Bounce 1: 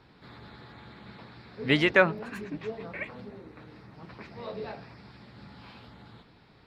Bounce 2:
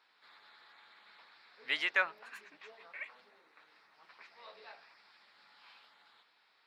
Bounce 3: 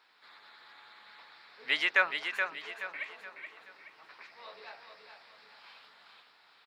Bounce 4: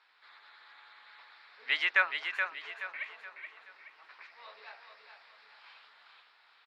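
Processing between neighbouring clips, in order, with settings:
HPF 1100 Hz 12 dB/oct; gain -6 dB
feedback echo 0.425 s, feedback 39%, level -6.5 dB; gain +4.5 dB
band-pass 1800 Hz, Q 0.54

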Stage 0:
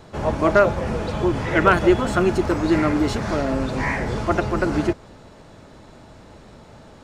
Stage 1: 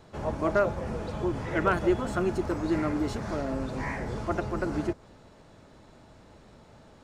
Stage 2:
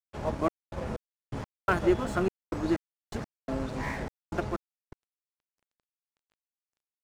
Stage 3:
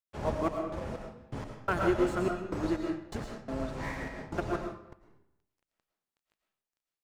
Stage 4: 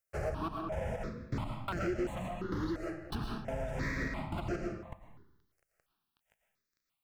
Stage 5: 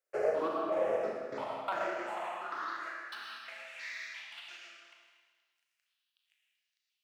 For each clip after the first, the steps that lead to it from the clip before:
dynamic EQ 2900 Hz, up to -4 dB, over -38 dBFS, Q 0.74; gain -8.5 dB
step gate "xxxx..xx...x..x" 125 bpm -60 dB; crossover distortion -44 dBFS; gain +1 dB
reverb RT60 0.75 s, pre-delay 70 ms, DRR 2.5 dB; noise-modulated level, depth 55%
compressor 4:1, threshold -38 dBFS, peak gain reduction 13.5 dB; overloaded stage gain 35 dB; step phaser 2.9 Hz 960–3600 Hz; gain +8.5 dB
LPF 4000 Hz 6 dB/oct; high-pass sweep 430 Hz -> 3000 Hz, 1.09–3.95; Schroeder reverb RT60 1.5 s, combs from 26 ms, DRR 0 dB

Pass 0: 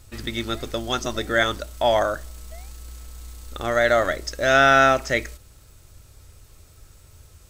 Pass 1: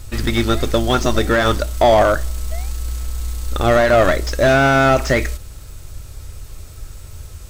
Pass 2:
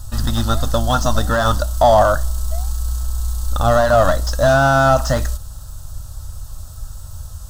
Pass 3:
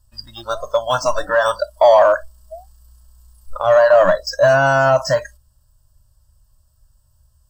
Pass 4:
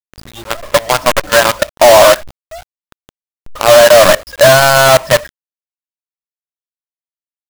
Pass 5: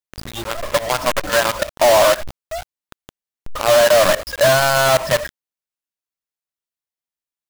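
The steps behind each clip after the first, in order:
low shelf 65 Hz +8.5 dB; maximiser +11.5 dB; slew limiter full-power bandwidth 350 Hz; gain -1 dB
fixed phaser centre 930 Hz, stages 4; gain +3 dB
spectral noise reduction 27 dB; ripple EQ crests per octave 1.3, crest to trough 9 dB; in parallel at -12 dB: overloaded stage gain 11 dB; on the sum: gain -1 dB
LPF 3200 Hz 24 dB/oct; companded quantiser 2-bit; gain -1 dB
limiter -11 dBFS, peak gain reduction 10 dB; gain +2.5 dB

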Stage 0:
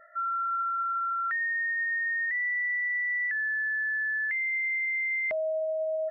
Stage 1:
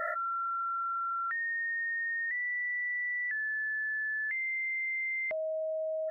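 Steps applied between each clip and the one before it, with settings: fast leveller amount 100%; gain -5 dB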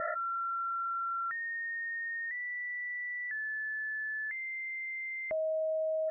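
LPF 1700 Hz 12 dB/oct; low shelf 350 Hz +7.5 dB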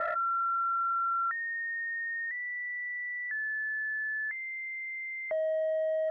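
overloaded stage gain 31 dB; three-band isolator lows -14 dB, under 560 Hz, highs -21 dB, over 2000 Hz; gain +6.5 dB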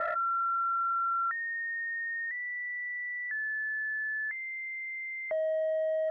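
nothing audible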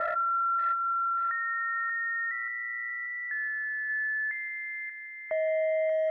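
thin delay 0.584 s, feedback 41%, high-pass 1900 Hz, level -3 dB; on a send at -18 dB: reverb RT60 1.9 s, pre-delay 7 ms; on the sum: gain +1.5 dB

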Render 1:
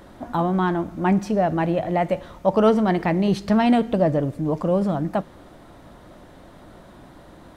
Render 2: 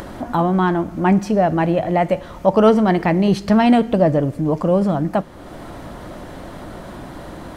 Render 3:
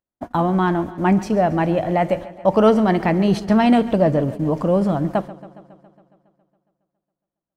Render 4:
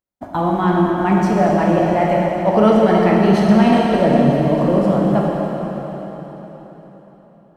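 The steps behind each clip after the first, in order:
notch 3700 Hz, Q 18; in parallel at -1.5 dB: upward compressor, threshold -21 dBFS; on the sum: gain -1 dB
gate -25 dBFS, range -59 dB; warbling echo 0.138 s, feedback 67%, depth 57 cents, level -18 dB; gain -1.5 dB
plate-style reverb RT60 4.4 s, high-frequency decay 0.9×, DRR -3.5 dB; gain -1.5 dB

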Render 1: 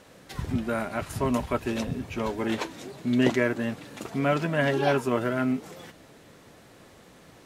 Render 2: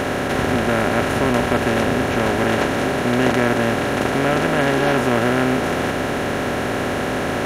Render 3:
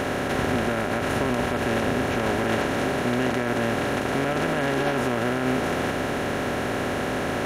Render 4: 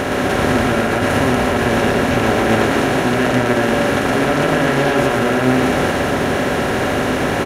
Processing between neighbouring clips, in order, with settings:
per-bin compression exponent 0.2
limiter -9 dBFS, peak gain reduction 6.5 dB; gain -4.5 dB
loudspeakers at several distances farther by 40 m -3 dB, 59 m -12 dB, 84 m -10 dB; gain +6.5 dB

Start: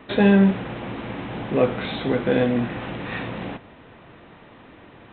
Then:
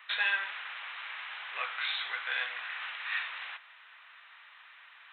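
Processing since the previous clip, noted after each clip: HPF 1300 Hz 24 dB/oct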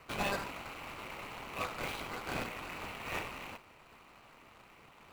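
median filter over 25 samples; gain +6 dB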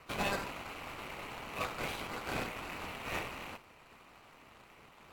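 AAC 64 kbps 44100 Hz

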